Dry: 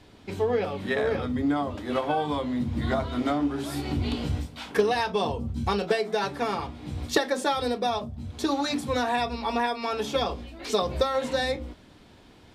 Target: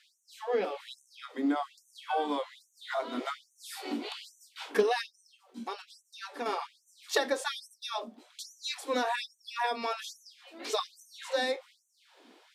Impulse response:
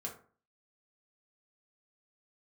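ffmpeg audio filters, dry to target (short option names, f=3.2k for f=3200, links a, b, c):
-filter_complex "[0:a]asettb=1/sr,asplit=3[a][b][c];[a]atrim=end=5.014[d];[b]atrim=start=5.01:end=6.46,asetpts=PTS-STARTPTS,afade=t=in:d=0.004:c=qsin,afade=t=out:st=1.446:d=0.004:c=qsin,acompressor=threshold=-30dB:ratio=5[e];[c]atrim=start=6.456[f];[d][e]acrossfade=d=0.004:c1=hsin:c2=qsin[g];[g][f]acrossfade=d=0.004:c1=qsin:c2=hsin,afftfilt=real='re*gte(b*sr/1024,200*pow(5900/200,0.5+0.5*sin(2*PI*1.2*pts/sr)))':imag='im*gte(b*sr/1024,200*pow(5900/200,0.5+0.5*sin(2*PI*1.2*pts/sr)))':win_size=1024:overlap=0.75,volume=-3dB"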